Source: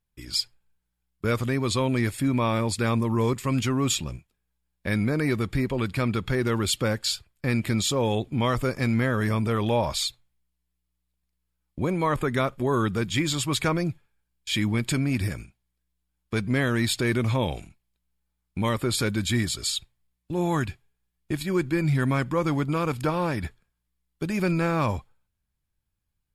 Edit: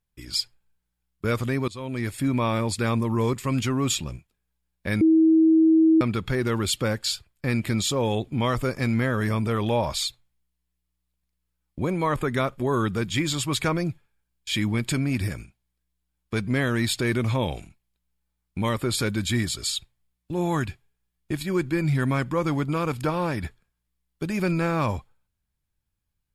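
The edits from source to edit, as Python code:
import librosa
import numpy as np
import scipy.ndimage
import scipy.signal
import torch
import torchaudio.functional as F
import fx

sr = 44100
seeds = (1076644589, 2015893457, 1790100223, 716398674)

y = fx.edit(x, sr, fx.fade_in_from(start_s=1.68, length_s=0.57, floor_db=-20.0),
    fx.bleep(start_s=5.01, length_s=1.0, hz=321.0, db=-13.5), tone=tone)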